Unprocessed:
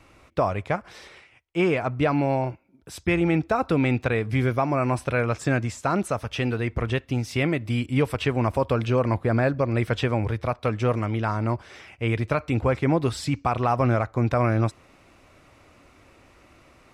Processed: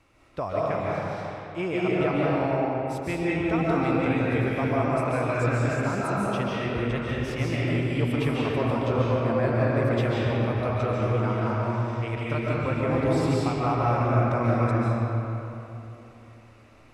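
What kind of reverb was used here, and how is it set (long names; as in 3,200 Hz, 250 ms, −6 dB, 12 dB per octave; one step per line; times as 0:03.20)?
comb and all-pass reverb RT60 3.2 s, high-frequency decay 0.6×, pre-delay 105 ms, DRR −6.5 dB
level −8.5 dB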